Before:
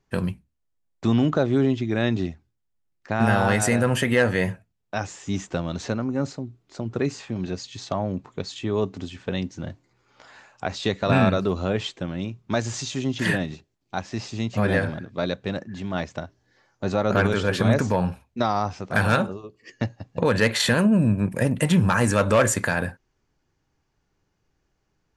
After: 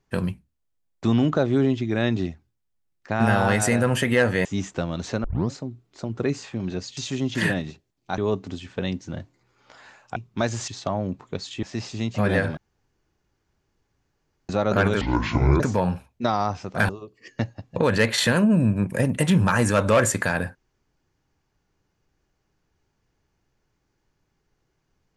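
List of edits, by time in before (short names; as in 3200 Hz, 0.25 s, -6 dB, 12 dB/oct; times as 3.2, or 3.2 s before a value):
4.45–5.21 cut
6 tape start 0.27 s
7.73–8.68 swap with 12.81–14.02
10.66–12.29 cut
14.96–16.88 room tone
17.4–17.76 speed 61%
19.05–19.31 cut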